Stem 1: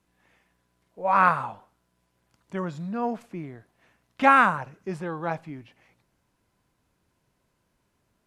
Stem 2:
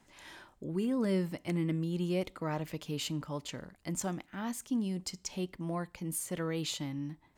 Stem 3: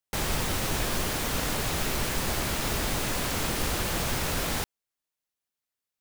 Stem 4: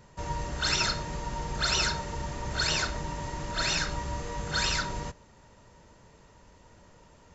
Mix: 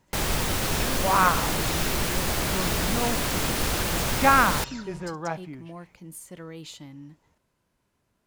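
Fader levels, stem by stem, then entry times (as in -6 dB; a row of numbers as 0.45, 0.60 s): -1.5, -5.5, +2.5, -13.5 dB; 0.00, 0.00, 0.00, 0.00 s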